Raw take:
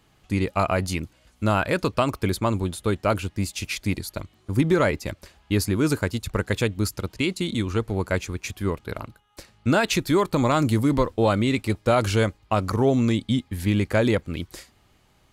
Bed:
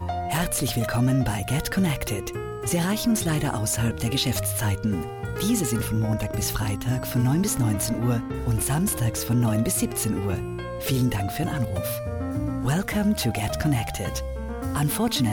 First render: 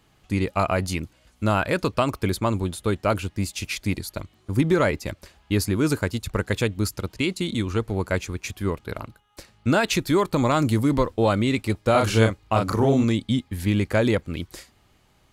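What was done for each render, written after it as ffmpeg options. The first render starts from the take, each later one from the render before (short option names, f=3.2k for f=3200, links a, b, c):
-filter_complex "[0:a]asettb=1/sr,asplit=3[a][b][c];[a]atrim=end=11.914[d];[b]atrim=start=11.91:end=13.04,asetpts=PTS-STARTPTS,afade=t=in:d=0.004:c=qsin,afade=t=out:st=1.126:d=0.004:c=qsin,asplit=2[e][f];[f]adelay=36,volume=-3dB[g];[e][g]amix=inputs=2:normalize=0,atrim=end_sample=49833[h];[c]atrim=start=13.036[i];[d][h]acrossfade=d=0.004:c1=hsin:c2=qsin[j];[j][i]acrossfade=d=0.004:c1=qsin:c2=hsin"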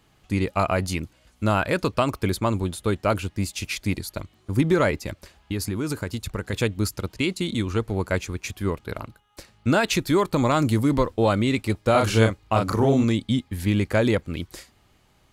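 -filter_complex "[0:a]asplit=3[a][b][c];[a]afade=t=out:st=4.98:d=0.02[d];[b]acompressor=threshold=-23dB:ratio=4:attack=3.2:release=140:knee=1:detection=peak,afade=t=in:st=4.98:d=0.02,afade=t=out:st=6.52:d=0.02[e];[c]afade=t=in:st=6.52:d=0.02[f];[d][e][f]amix=inputs=3:normalize=0"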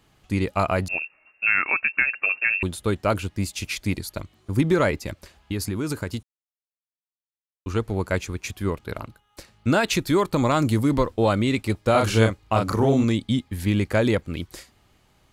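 -filter_complex "[0:a]asettb=1/sr,asplit=3[a][b][c];[a]atrim=end=0.884[d];[b]atrim=start=0.88:end=2.63,asetpts=PTS-STARTPTS,afade=t=in:d=0.004:c=qsin,afade=t=out:st=1.746:d=0.004:c=qsin,lowpass=f=2.4k:t=q:w=0.5098,lowpass=f=2.4k:t=q:w=0.6013,lowpass=f=2.4k:t=q:w=0.9,lowpass=f=2.4k:t=q:w=2.563,afreqshift=-2800[e];[c]atrim=start=2.626[f];[d][e]acrossfade=d=0.004:c1=hsin:c2=qsin[g];[g][f]acrossfade=d=0.004:c1=qsin:c2=hsin,asplit=3[h][i][j];[h]atrim=end=6.23,asetpts=PTS-STARTPTS,afade=t=out:st=6.226:d=0.004:c=hsin[k];[i]atrim=start=6.23:end=7.66,asetpts=PTS-STARTPTS,volume=0[l];[j]atrim=start=7.66,asetpts=PTS-STARTPTS,afade=t=in:d=0.004:c=hsin[m];[k][l][m]concat=n=3:v=0:a=1"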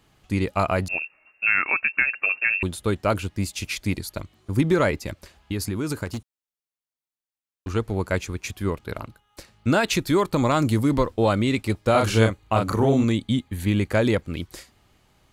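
-filter_complex "[0:a]asettb=1/sr,asplit=3[a][b][c];[a]atrim=end=6.054[d];[b]atrim=start=6.05:end=7.74,asetpts=PTS-STARTPTS,afade=t=in:d=0.004:c=qsin,afade=t=out:st=1.686:d=0.004:c=qsin,aeval=exprs='0.075*(abs(mod(val(0)/0.075+3,4)-2)-1)':c=same[e];[c]atrim=start=7.736[f];[d][e]acrossfade=d=0.004:c1=hsin:c2=qsin[g];[g][f]acrossfade=d=0.004:c1=qsin:c2=hsin,asettb=1/sr,asplit=3[h][i][j];[h]atrim=end=12.294[k];[i]atrim=start=12.29:end=13.9,asetpts=PTS-STARTPTS,afade=t=in:d=0.004:c=qsin,afade=t=out:st=1.606:d=0.004:c=qsin,bandreject=f=5.2k:w=5.1[l];[j]atrim=start=13.896[m];[k][l]acrossfade=d=0.004:c1=hsin:c2=qsin[n];[n][m]acrossfade=d=0.004:c1=qsin:c2=hsin"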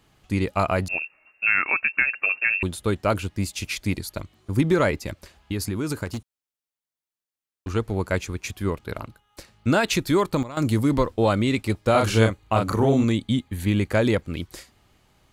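-filter_complex "[0:a]asplit=3[a][b][c];[a]atrim=end=10.43,asetpts=PTS-STARTPTS,afade=t=out:st=10.17:d=0.26:c=log:silence=0.158489[d];[b]atrim=start=10.43:end=10.57,asetpts=PTS-STARTPTS,volume=-16dB[e];[c]atrim=start=10.57,asetpts=PTS-STARTPTS,afade=t=in:d=0.26:c=log:silence=0.158489[f];[d][e][f]concat=n=3:v=0:a=1"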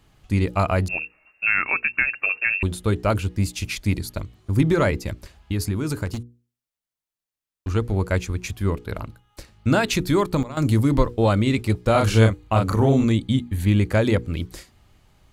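-af "lowshelf=f=120:g=10,bandreject=f=60:t=h:w=6,bandreject=f=120:t=h:w=6,bandreject=f=180:t=h:w=6,bandreject=f=240:t=h:w=6,bandreject=f=300:t=h:w=6,bandreject=f=360:t=h:w=6,bandreject=f=420:t=h:w=6,bandreject=f=480:t=h:w=6"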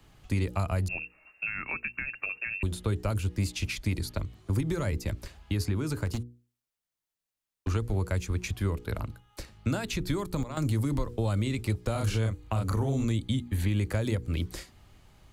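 -filter_complex "[0:a]alimiter=limit=-10.5dB:level=0:latency=1:release=106,acrossover=split=110|250|5500[a][b][c][d];[a]acompressor=threshold=-28dB:ratio=4[e];[b]acompressor=threshold=-38dB:ratio=4[f];[c]acompressor=threshold=-34dB:ratio=4[g];[d]acompressor=threshold=-45dB:ratio=4[h];[e][f][g][h]amix=inputs=4:normalize=0"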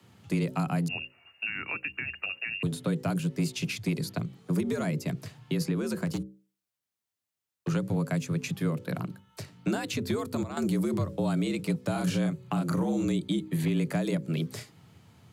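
-af "afreqshift=74,asoftclip=type=hard:threshold=-19dB"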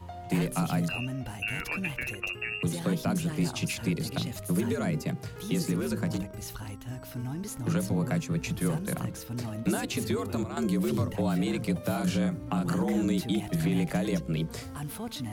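-filter_complex "[1:a]volume=-13.5dB[a];[0:a][a]amix=inputs=2:normalize=0"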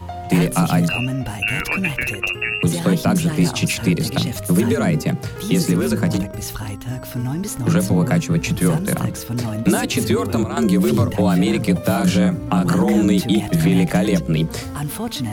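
-af "volume=11.5dB"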